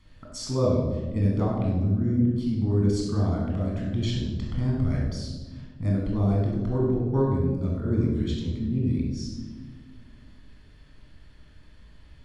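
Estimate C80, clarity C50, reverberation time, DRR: 4.0 dB, 1.0 dB, 1.4 s, −3.0 dB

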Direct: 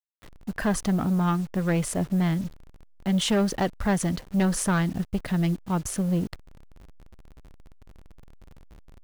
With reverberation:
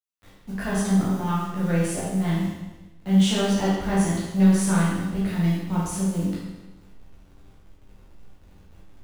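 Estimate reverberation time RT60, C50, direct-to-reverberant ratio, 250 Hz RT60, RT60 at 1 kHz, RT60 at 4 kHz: 1.1 s, −0.5 dB, −8.5 dB, 1.1 s, 1.1 s, 1.1 s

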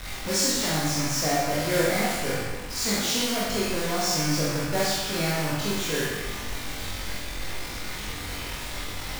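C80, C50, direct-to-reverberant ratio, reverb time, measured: 1.5 dB, −1.5 dB, −7.5 dB, 1.2 s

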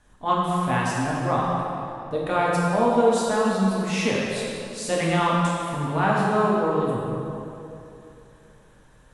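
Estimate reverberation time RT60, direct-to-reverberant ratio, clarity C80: 2.8 s, −5.5 dB, −0.5 dB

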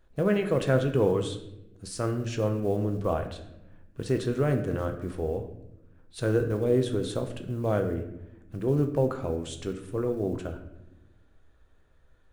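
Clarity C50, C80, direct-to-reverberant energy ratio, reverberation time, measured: 9.5 dB, 12.0 dB, 5.5 dB, 0.90 s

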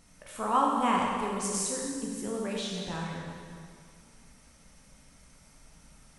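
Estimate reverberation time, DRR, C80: 2.0 s, −2.5 dB, 1.5 dB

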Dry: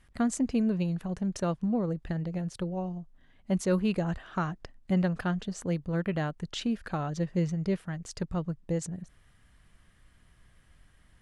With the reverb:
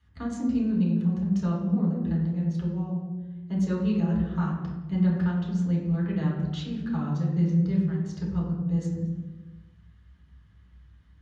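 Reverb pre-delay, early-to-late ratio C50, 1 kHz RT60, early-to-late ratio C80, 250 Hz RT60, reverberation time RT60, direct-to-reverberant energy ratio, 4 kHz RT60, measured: 3 ms, 2.5 dB, 1.0 s, 5.5 dB, 1.4 s, 1.2 s, −5.5 dB, 0.85 s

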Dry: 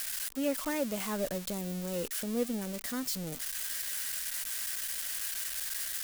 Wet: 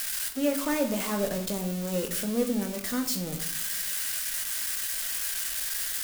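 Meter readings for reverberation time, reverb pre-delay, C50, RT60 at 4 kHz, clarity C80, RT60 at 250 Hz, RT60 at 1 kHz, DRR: 0.65 s, 20 ms, 9.5 dB, 0.50 s, 12.5 dB, 1.1 s, 0.65 s, 4.5 dB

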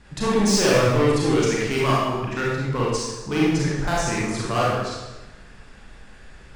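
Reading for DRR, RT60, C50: −6.0 dB, 1.1 s, −2.0 dB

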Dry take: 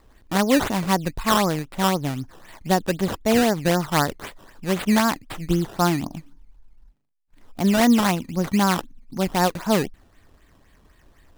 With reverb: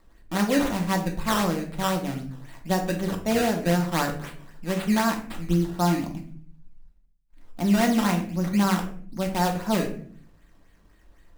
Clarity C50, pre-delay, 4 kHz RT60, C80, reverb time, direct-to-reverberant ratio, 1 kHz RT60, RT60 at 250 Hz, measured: 8.5 dB, 3 ms, 0.35 s, 13.0 dB, 0.50 s, 1.5 dB, 0.45 s, 0.85 s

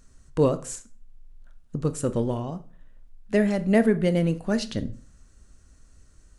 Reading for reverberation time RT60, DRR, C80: 0.45 s, 11.5 dB, 21.5 dB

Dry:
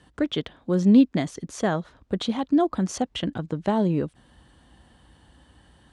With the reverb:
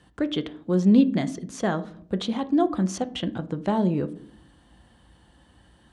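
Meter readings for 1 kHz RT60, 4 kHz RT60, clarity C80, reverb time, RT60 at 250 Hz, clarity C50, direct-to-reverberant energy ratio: 0.50 s, 0.35 s, 22.0 dB, 0.60 s, 0.95 s, 18.0 dB, 10.5 dB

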